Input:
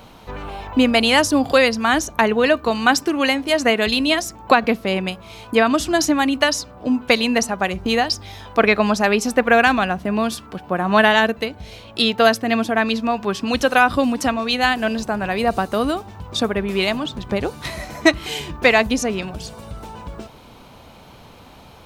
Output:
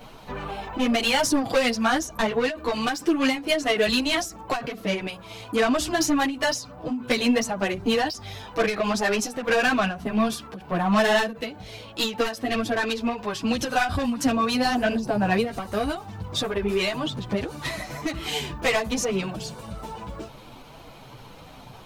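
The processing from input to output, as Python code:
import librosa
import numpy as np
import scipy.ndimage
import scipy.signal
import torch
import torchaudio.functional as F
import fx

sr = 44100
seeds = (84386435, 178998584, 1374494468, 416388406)

y = 10.0 ** (-15.5 / 20.0) * np.tanh(x / 10.0 ** (-15.5 / 20.0))
y = fx.chorus_voices(y, sr, voices=6, hz=0.56, base_ms=11, depth_ms=4.9, mix_pct=60)
y = fx.end_taper(y, sr, db_per_s=130.0)
y = y * librosa.db_to_amplitude(2.0)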